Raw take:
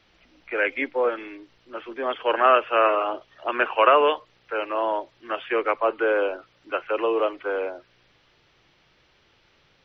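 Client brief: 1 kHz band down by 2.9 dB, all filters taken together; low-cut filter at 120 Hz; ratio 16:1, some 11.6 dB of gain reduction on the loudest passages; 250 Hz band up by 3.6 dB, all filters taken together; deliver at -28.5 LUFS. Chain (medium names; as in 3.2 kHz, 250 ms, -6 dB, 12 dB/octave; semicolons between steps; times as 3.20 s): high-pass 120 Hz; peaking EQ 250 Hz +6 dB; peaking EQ 1 kHz -4 dB; compression 16:1, threshold -25 dBFS; trim +3 dB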